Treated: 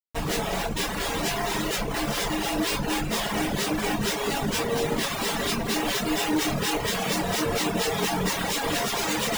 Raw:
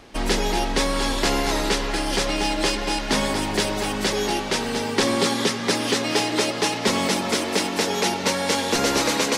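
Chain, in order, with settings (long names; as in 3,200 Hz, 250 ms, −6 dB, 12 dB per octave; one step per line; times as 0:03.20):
loose part that buzzes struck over −31 dBFS, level −24 dBFS
high-shelf EQ 4,200 Hz +5.5 dB
mains-hum notches 50/100/150/200/250/300/350 Hz
comparator with hysteresis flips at −24.5 dBFS
flanger 0.41 Hz, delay 8.6 ms, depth 1.5 ms, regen −69%
convolution reverb, pre-delay 3 ms, DRR −7.5 dB
reverb reduction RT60 0.88 s
level −6 dB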